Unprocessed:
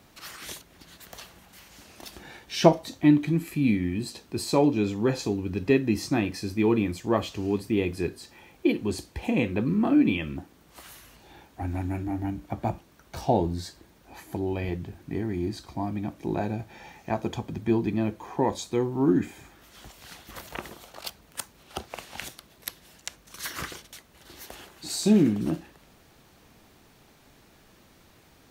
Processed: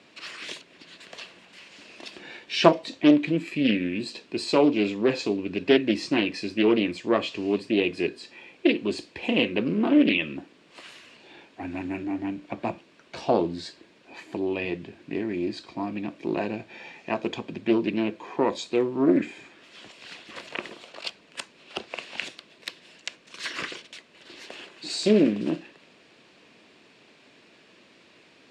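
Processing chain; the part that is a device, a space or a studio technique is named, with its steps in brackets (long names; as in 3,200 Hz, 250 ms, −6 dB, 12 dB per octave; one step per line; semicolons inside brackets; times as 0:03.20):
full-range speaker at full volume (highs frequency-modulated by the lows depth 0.43 ms; loudspeaker in its box 260–6,800 Hz, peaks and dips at 810 Hz −8 dB, 1,300 Hz −5 dB, 2,600 Hz +6 dB, 6,100 Hz −8 dB)
level +4 dB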